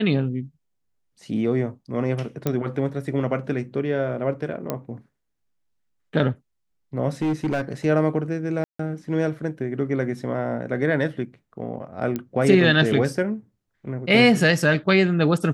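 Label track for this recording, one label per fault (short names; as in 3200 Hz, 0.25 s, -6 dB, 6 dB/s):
2.470000	2.470000	pop -10 dBFS
4.700000	4.700000	pop -11 dBFS
7.220000	7.720000	clipped -19 dBFS
8.640000	8.790000	gap 0.154 s
12.160000	12.160000	pop -14 dBFS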